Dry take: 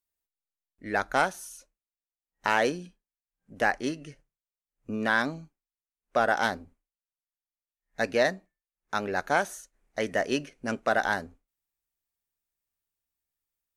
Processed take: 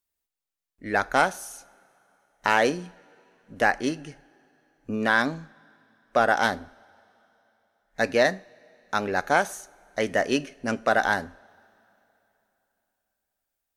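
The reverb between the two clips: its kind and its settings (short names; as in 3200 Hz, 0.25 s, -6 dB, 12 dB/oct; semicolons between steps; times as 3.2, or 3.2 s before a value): two-slope reverb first 0.43 s, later 3.3 s, from -18 dB, DRR 17.5 dB; gain +3.5 dB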